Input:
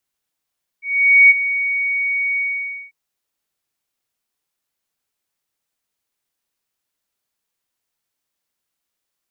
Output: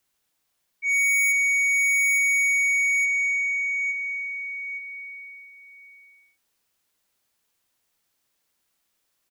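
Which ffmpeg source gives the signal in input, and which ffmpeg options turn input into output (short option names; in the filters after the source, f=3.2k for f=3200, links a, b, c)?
-f lavfi -i "aevalsrc='0.596*sin(2*PI*2240*t)':d=2.094:s=44100,afade=t=in:d=0.48,afade=t=out:st=0.48:d=0.027:silence=0.237,afade=t=out:st=1.56:d=0.534"
-filter_complex "[0:a]aecho=1:1:867|1734|2601|3468:0.398|0.151|0.0575|0.0218,asplit=2[a][b];[b]alimiter=limit=-14dB:level=0:latency=1,volume=-2dB[c];[a][c]amix=inputs=2:normalize=0,asoftclip=type=tanh:threshold=-20dB"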